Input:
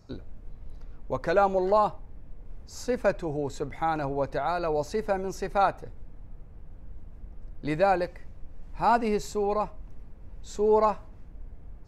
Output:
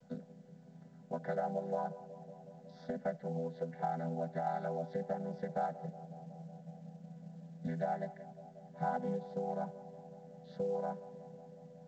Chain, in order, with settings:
channel vocoder with a chord as carrier minor triad, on E3
0:01.14–0:01.72: hum removal 156 Hz, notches 5
0:04.49–0:05.17: notch filter 1,100 Hz, Q 11
0:05.82–0:07.67: parametric band 170 Hz +8 dB 0.22 octaves
downward compressor 6 to 1, threshold −34 dBFS, peak gain reduction 17.5 dB
high-frequency loss of the air 250 metres
phaser with its sweep stopped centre 1,700 Hz, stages 8
feedback echo with a band-pass in the loop 184 ms, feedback 81%, band-pass 560 Hz, level −15 dB
level +4 dB
mu-law 128 kbit/s 16,000 Hz

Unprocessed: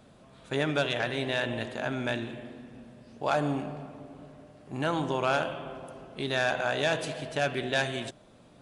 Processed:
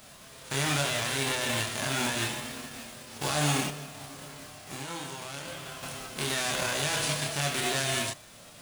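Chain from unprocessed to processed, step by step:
spectral envelope flattened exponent 0.3
brickwall limiter −22 dBFS, peak gain reduction 11 dB
0:03.67–0:05.83: downward compressor 2.5 to 1, threshold −46 dBFS, peak gain reduction 11.5 dB
multi-voice chorus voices 4, 0.28 Hz, delay 28 ms, depth 1.5 ms
level +8.5 dB

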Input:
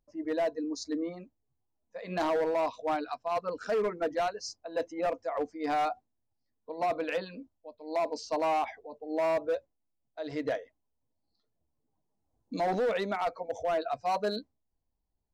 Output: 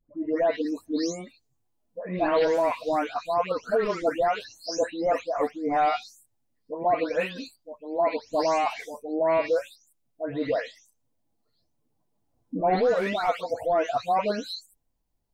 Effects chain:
every frequency bin delayed by itself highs late, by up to 378 ms
level +6.5 dB

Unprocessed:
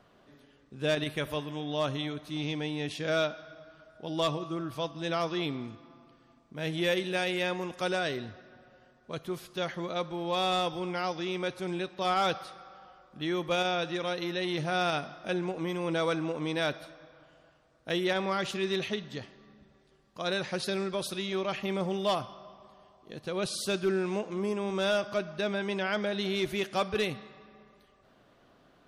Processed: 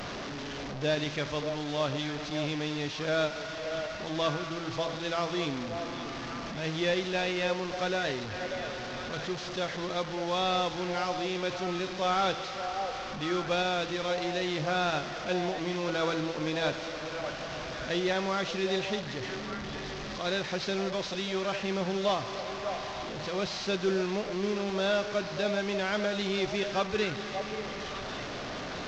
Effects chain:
linear delta modulator 32 kbit/s, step −32 dBFS
hum removal 166 Hz, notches 37
on a send: echo through a band-pass that steps 587 ms, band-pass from 610 Hz, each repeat 1.4 octaves, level −5 dB

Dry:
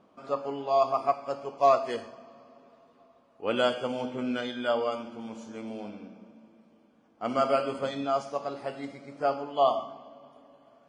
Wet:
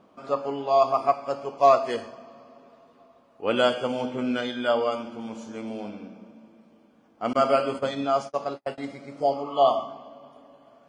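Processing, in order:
0:07.33–0:08.78: noise gate −35 dBFS, range −46 dB
0:09.19–0:09.65: healed spectral selection 990–2,800 Hz both
level +4 dB

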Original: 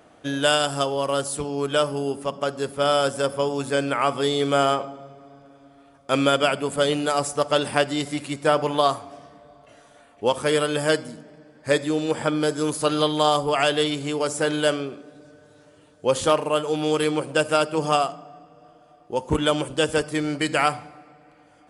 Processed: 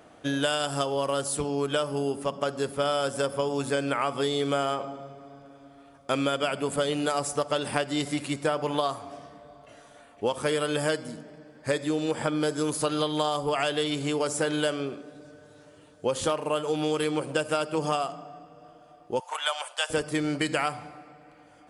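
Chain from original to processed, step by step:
0:19.20–0:19.90: elliptic high-pass filter 690 Hz, stop band 80 dB
downward compressor 6 to 1, threshold −23 dBFS, peak gain reduction 9.5 dB

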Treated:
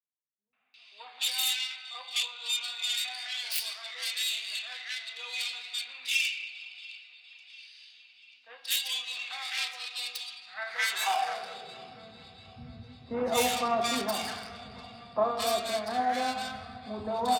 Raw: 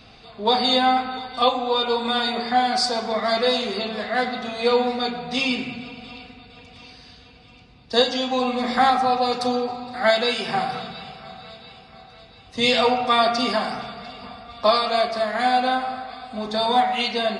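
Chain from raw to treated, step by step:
stylus tracing distortion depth 0.25 ms
high-pass filter sweep 2,600 Hz → 86 Hz, 0:09.90–0:12.13
three-band delay without the direct sound lows, mids, highs 530/740 ms, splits 160/1,400 Hz
level −8 dB

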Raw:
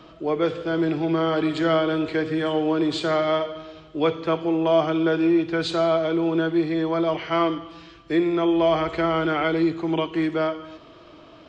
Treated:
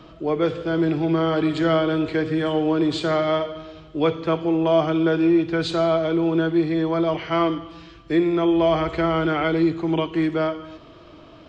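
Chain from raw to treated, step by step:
low-shelf EQ 180 Hz +7.5 dB

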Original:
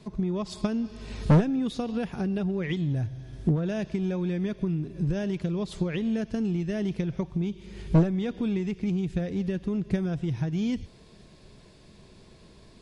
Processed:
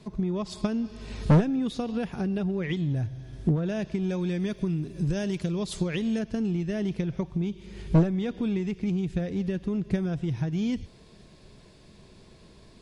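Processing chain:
0:04.09–0:06.19: high-shelf EQ 4,500 Hz +12 dB

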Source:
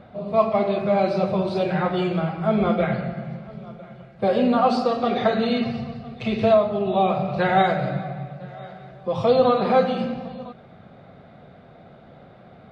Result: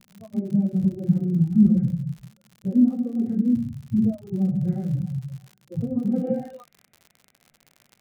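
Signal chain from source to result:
noise reduction from a noise print of the clip's start 26 dB
octave-band graphic EQ 125/250/1,000/2,000 Hz +4/+4/−7/+10 dB
in parallel at 0 dB: downward compressor 6 to 1, threshold −26 dBFS, peak gain reduction 13 dB
on the sum: low-pass filter sweep 210 Hz → 2,600 Hz, 0:09.70–0:10.52
time stretch by phase vocoder 0.63×
surface crackle 74 per second −33 dBFS
level −4 dB

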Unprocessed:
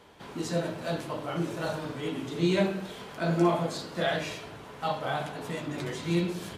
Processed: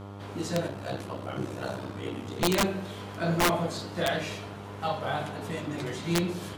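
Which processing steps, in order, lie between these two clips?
0:00.67–0:02.42: ring modulation 32 Hz
hum with harmonics 100 Hz, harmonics 14, −42 dBFS −5 dB per octave
wrap-around overflow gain 17 dB

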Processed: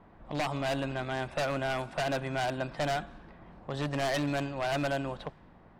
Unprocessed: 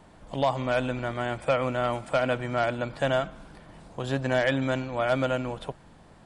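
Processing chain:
wave folding −21 dBFS
low-pass that shuts in the quiet parts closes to 1,700 Hz, open at −23.5 dBFS
speed change +8%
level −3 dB

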